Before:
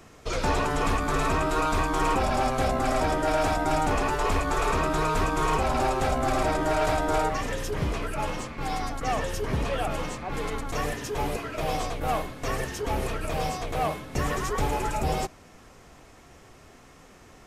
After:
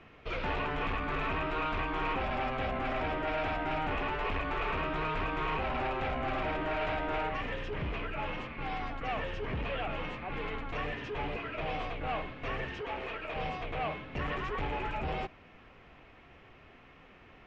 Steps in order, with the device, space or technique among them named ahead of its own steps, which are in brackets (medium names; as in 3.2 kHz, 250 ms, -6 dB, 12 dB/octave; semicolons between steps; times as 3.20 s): overdriven synthesiser ladder filter (saturation -24 dBFS, distortion -13 dB; four-pole ladder low-pass 3.2 kHz, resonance 45%); 12.81–13.36 s: tone controls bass -12 dB, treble 0 dB; trim +3.5 dB